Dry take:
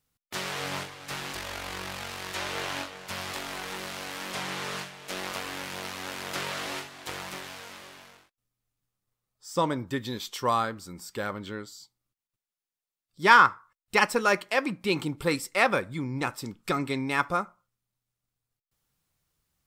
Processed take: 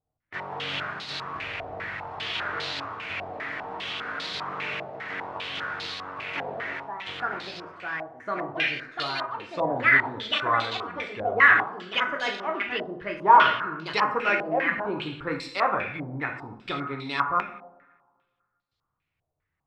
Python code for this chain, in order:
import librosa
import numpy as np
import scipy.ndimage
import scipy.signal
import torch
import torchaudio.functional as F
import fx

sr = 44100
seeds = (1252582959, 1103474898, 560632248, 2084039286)

y = fx.echo_pitch(x, sr, ms=226, semitones=3, count=3, db_per_echo=-3.0)
y = fx.rev_double_slope(y, sr, seeds[0], early_s=0.71, late_s=1.8, knee_db=-18, drr_db=1.5)
y = fx.filter_held_lowpass(y, sr, hz=5.0, low_hz=700.0, high_hz=4100.0)
y = y * librosa.db_to_amplitude(-6.5)